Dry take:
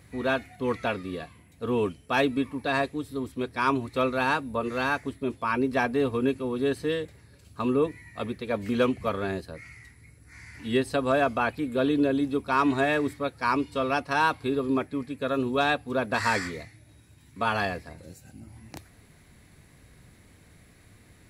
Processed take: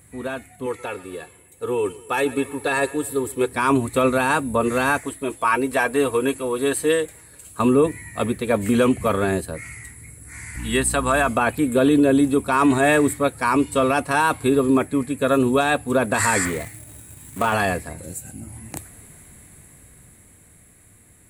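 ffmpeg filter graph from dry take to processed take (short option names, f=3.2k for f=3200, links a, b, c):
-filter_complex "[0:a]asettb=1/sr,asplit=3[a][b][c];[a]atrim=end=0.664[d];[b]atrim=start=0.66:end=3.53,asetpts=PTS-STARTPTS,afade=t=in:d=0.004:c=qsin,afade=t=out:st=2.866:d=0.004:c=qsin,highpass=f=200:p=1,aecho=1:1:2.3:0.6,atrim=end_sample=126567,aecho=1:1:125|250|375|500:0.075|0.039|0.0203|0.0105,atrim=end_sample=126567[e];[c]atrim=start=3.526[f];[d][e]acrossfade=d=0.004:c1=hsin:c2=qsin[g];[g][f]acrossfade=d=0.004:c1=qsin:c2=hsin,asettb=1/sr,asplit=3[h][i][j];[h]atrim=end=5.004[k];[i]atrim=start=5:end=7.6,asetpts=PTS-STARTPTS,afade=t=in:d=0.004:c=qsin,afade=t=out:st=2.596:d=0.004:c=qsin,equalizer=f=140:w=0.66:g=-12,aecho=1:1:6.3:0.39,atrim=end_sample=114660[l];[j]atrim=start=7.596[m];[k][l]acrossfade=d=0.004:c1=hsin:c2=qsin[n];[n][m]acrossfade=d=0.004:c1=qsin:c2=hsin,asettb=1/sr,asplit=3[o][p][q];[o]atrim=end=10.564[r];[p]atrim=start=10.56:end=11.29,asetpts=PTS-STARTPTS,afade=t=in:d=0.004:c=qsin,afade=t=out:st=0.726:d=0.004:c=qsin,lowshelf=f=730:t=q:w=1.5:g=-6,aeval=exprs='val(0)+0.0112*(sin(2*PI*60*n/s)+sin(2*PI*2*60*n/s)/2+sin(2*PI*3*60*n/s)/3+sin(2*PI*4*60*n/s)/4+sin(2*PI*5*60*n/s)/5)':c=same[s];[q]atrim=start=11.286[t];[r][s]acrossfade=d=0.004:c1=hsin:c2=qsin[u];[u][t]acrossfade=d=0.004:c1=qsin:c2=hsin,asettb=1/sr,asplit=3[v][w][x];[v]atrim=end=16.454[y];[w]atrim=start=16.45:end=17.54,asetpts=PTS-STARTPTS,afade=t=in:d=0.004:c=qsin,afade=t=out:st=1.086:d=0.004:c=qsin,equalizer=f=680:w=0.82:g=2,acrusher=bits=2:mode=log:mix=0:aa=0.000001,acrossover=split=3800[z][aa];[aa]acompressor=threshold=-52dB:ratio=4:attack=1:release=60[ab];[z][ab]amix=inputs=2:normalize=0[ac];[x]atrim=start=17.536[ad];[y][ac]acrossfade=d=0.004:c1=hsin:c2=qsin[ae];[ae][ad]acrossfade=d=0.004:c1=qsin:c2=hsin,highshelf=f=6.6k:t=q:w=3:g=8.5,alimiter=limit=-18dB:level=0:latency=1:release=16,dynaudnorm=f=350:g=13:m=9.5dB"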